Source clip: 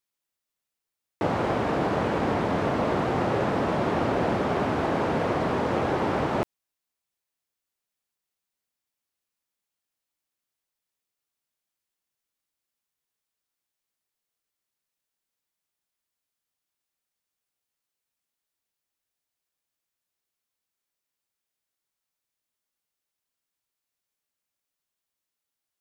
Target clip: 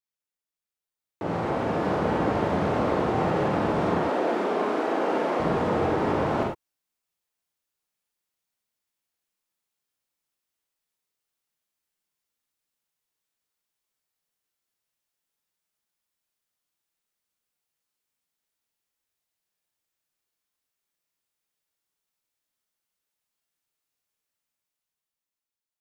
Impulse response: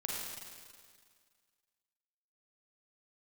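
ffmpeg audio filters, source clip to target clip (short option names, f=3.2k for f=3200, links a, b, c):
-filter_complex "[0:a]asettb=1/sr,asplit=3[a][b][c];[a]atrim=end=3.984[d];[b]atrim=start=3.98:end=5.4,asetpts=PTS-STARTPTS,afade=t=in:d=0.004:c=qsin,afade=t=out:st=1.416:d=0.004:c=qsin,highpass=f=250:w=0.5412,highpass=f=250:w=1.3066[e];[c]atrim=start=5.396[f];[d][e]acrossfade=d=0.004:c1=hsin:c2=qsin[g];[g][f]acrossfade=d=0.004:c1=qsin:c2=hsin,acrossover=split=1400[h][i];[i]alimiter=level_in=9dB:limit=-24dB:level=0:latency=1:release=138,volume=-9dB[j];[h][j]amix=inputs=2:normalize=0,dynaudnorm=f=290:g=9:m=9dB[k];[1:a]atrim=start_sample=2205,afade=t=out:st=0.16:d=0.01,atrim=end_sample=7497[l];[k][l]afir=irnorm=-1:irlink=0,volume=-8dB"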